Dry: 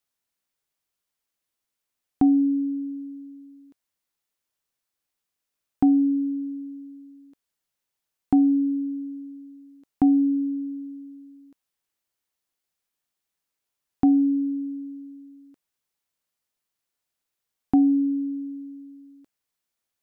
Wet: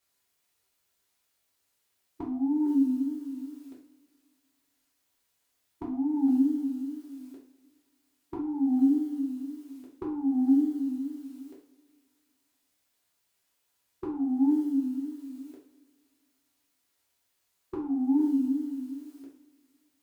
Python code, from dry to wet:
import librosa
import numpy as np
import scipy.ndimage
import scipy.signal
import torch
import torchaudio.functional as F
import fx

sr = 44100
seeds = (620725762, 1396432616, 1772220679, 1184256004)

y = fx.over_compress(x, sr, threshold_db=-26.0, ratio=-1.0)
y = fx.formant_shift(y, sr, semitones=4)
y = fx.wow_flutter(y, sr, seeds[0], rate_hz=2.1, depth_cents=150.0)
y = fx.rev_double_slope(y, sr, seeds[1], early_s=0.43, late_s=1.9, knee_db=-18, drr_db=-5.5)
y = y * librosa.db_to_amplitude(-3.0)